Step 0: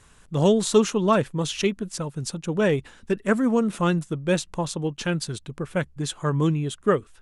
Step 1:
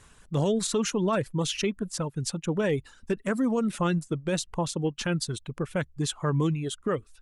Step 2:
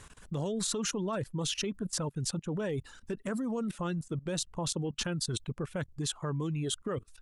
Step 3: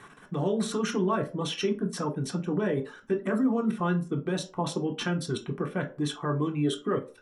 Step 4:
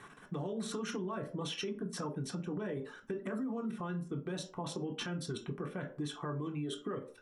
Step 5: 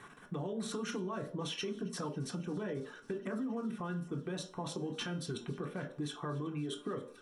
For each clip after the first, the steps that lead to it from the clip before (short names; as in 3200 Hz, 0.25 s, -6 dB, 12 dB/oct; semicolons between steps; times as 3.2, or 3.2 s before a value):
reverb removal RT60 0.61 s; limiter -18 dBFS, peak gain reduction 11.5 dB
dynamic EQ 2200 Hz, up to -5 dB, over -49 dBFS, Q 2.8; level quantiser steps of 19 dB; gain +5.5 dB
reverb RT60 0.40 s, pre-delay 3 ms, DRR 0.5 dB; gain -5 dB
limiter -22 dBFS, peak gain reduction 7 dB; compressor 2.5:1, threshold -33 dBFS, peak gain reduction 6 dB; gain -3.5 dB
resonator 240 Hz, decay 0.62 s, harmonics all, mix 50%; thinning echo 0.273 s, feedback 85%, high-pass 420 Hz, level -23 dB; gain +5.5 dB